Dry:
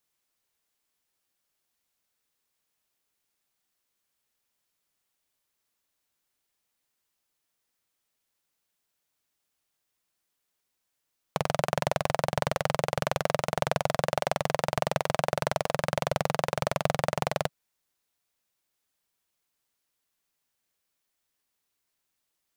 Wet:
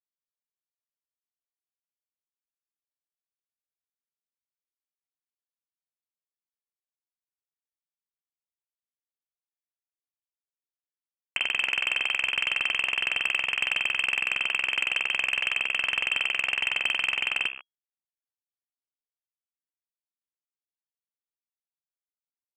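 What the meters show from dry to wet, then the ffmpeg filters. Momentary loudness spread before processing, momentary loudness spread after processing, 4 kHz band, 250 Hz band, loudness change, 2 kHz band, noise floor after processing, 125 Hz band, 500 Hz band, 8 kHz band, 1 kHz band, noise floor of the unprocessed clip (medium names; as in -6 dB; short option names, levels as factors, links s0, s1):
1 LU, 2 LU, +10.5 dB, under -15 dB, +4.5 dB, +11.0 dB, under -85 dBFS, under -25 dB, -19.5 dB, -3.5 dB, -10.0 dB, -81 dBFS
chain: -filter_complex "[0:a]afreqshift=76,equalizer=f=125:t=o:w=1:g=10,equalizer=f=250:t=o:w=1:g=-6,equalizer=f=500:t=o:w=1:g=6,asplit=2[s0][s1];[s1]alimiter=limit=0.126:level=0:latency=1:release=20,volume=1.06[s2];[s0][s2]amix=inputs=2:normalize=0,bandreject=f=66.03:t=h:w=4,bandreject=f=132.06:t=h:w=4,bandreject=f=198.09:t=h:w=4,bandreject=f=264.12:t=h:w=4,bandreject=f=330.15:t=h:w=4,bandreject=f=396.18:t=h:w=4,bandreject=f=462.21:t=h:w=4,bandreject=f=528.24:t=h:w=4,bandreject=f=594.27:t=h:w=4,bandreject=f=660.3:t=h:w=4,bandreject=f=726.33:t=h:w=4,bandreject=f=792.36:t=h:w=4,bandreject=f=858.39:t=h:w=4,bandreject=f=924.42:t=h:w=4,bandreject=f=990.45:t=h:w=4,bandreject=f=1056.48:t=h:w=4,bandreject=f=1122.51:t=h:w=4,bandreject=f=1188.54:t=h:w=4,bandreject=f=1254.57:t=h:w=4,bandreject=f=1320.6:t=h:w=4,bandreject=f=1386.63:t=h:w=4,bandreject=f=1452.66:t=h:w=4,aresample=11025,acrusher=bits=5:mix=0:aa=0.000001,aresample=44100,lowpass=f=2800:t=q:w=0.5098,lowpass=f=2800:t=q:w=0.6013,lowpass=f=2800:t=q:w=0.9,lowpass=f=2800:t=q:w=2.563,afreqshift=-3300,asoftclip=type=tanh:threshold=0.224,volume=0.794"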